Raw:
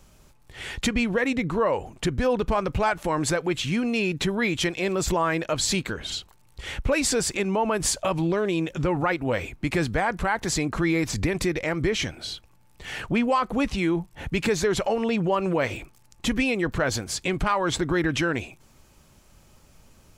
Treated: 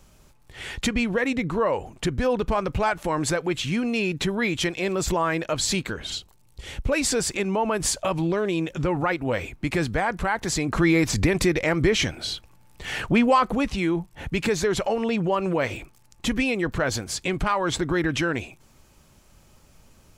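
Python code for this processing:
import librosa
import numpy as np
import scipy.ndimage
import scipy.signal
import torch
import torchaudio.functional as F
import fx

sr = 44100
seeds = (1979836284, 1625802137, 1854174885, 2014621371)

y = fx.peak_eq(x, sr, hz=1500.0, db=-7.0, octaves=2.0, at=(6.18, 6.92))
y = fx.edit(y, sr, fx.clip_gain(start_s=10.68, length_s=2.87, db=4.0), tone=tone)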